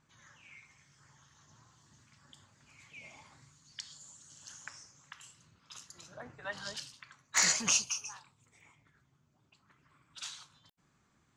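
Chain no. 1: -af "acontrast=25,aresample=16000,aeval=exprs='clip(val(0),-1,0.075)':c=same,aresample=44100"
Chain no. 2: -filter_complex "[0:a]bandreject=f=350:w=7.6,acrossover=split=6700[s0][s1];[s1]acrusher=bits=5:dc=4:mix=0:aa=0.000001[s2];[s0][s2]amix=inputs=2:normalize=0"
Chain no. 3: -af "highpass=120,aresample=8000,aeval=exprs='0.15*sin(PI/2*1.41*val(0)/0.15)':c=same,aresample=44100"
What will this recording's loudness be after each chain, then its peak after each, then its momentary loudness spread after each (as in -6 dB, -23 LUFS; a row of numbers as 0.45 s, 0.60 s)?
-30.0 LUFS, -33.5 LUFS, -35.0 LUFS; -10.5 dBFS, -12.0 dBFS, -13.5 dBFS; 24 LU, 24 LU, 26 LU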